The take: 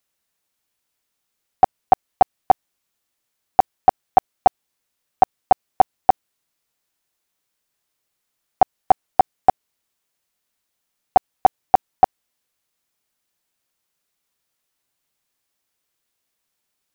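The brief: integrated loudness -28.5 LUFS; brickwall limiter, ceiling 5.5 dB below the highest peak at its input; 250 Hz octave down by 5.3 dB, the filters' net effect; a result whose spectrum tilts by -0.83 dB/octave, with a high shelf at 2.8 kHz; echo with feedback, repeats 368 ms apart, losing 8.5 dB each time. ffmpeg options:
-af "equalizer=f=250:t=o:g=-7.5,highshelf=f=2800:g=-5.5,alimiter=limit=0.355:level=0:latency=1,aecho=1:1:368|736|1104|1472:0.376|0.143|0.0543|0.0206,volume=0.841"

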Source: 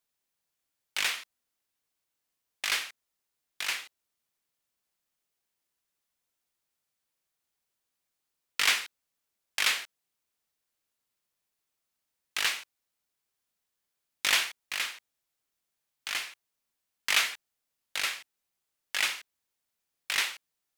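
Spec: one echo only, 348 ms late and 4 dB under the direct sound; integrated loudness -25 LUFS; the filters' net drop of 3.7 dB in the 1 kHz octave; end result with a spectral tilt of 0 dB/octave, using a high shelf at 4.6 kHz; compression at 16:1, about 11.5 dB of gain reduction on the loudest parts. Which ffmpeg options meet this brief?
-af "equalizer=f=1000:t=o:g=-4.5,highshelf=f=4600:g=-7,acompressor=threshold=0.0224:ratio=16,aecho=1:1:348:0.631,volume=5.31"

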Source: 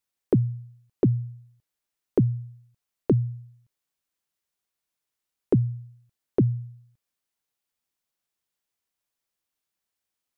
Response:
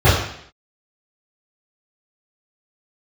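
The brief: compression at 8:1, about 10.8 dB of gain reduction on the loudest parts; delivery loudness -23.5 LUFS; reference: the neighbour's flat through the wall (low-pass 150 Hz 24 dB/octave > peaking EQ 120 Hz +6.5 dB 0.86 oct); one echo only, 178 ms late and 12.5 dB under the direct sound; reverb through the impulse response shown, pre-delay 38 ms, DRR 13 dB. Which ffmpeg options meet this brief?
-filter_complex "[0:a]acompressor=threshold=0.0447:ratio=8,aecho=1:1:178:0.237,asplit=2[s0][s1];[1:a]atrim=start_sample=2205,adelay=38[s2];[s1][s2]afir=irnorm=-1:irlink=0,volume=0.0119[s3];[s0][s3]amix=inputs=2:normalize=0,lowpass=f=150:w=0.5412,lowpass=f=150:w=1.3066,equalizer=f=120:t=o:w=0.86:g=6.5,volume=1.58"

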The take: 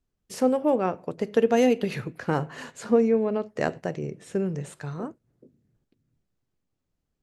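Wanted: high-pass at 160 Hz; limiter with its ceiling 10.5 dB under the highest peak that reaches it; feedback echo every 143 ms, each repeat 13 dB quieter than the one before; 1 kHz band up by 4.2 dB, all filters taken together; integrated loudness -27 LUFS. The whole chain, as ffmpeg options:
-af "highpass=160,equalizer=f=1000:t=o:g=6,alimiter=limit=0.126:level=0:latency=1,aecho=1:1:143|286|429:0.224|0.0493|0.0108,volume=1.41"

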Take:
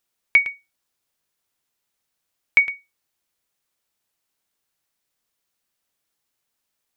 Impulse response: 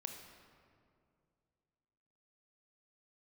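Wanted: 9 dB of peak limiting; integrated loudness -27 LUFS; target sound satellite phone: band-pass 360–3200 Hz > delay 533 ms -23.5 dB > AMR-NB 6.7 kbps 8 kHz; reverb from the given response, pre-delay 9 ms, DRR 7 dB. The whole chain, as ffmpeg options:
-filter_complex "[0:a]alimiter=limit=0.211:level=0:latency=1,asplit=2[s0][s1];[1:a]atrim=start_sample=2205,adelay=9[s2];[s1][s2]afir=irnorm=-1:irlink=0,volume=0.596[s3];[s0][s3]amix=inputs=2:normalize=0,highpass=360,lowpass=3200,aecho=1:1:533:0.0668,volume=0.794" -ar 8000 -c:a libopencore_amrnb -b:a 6700

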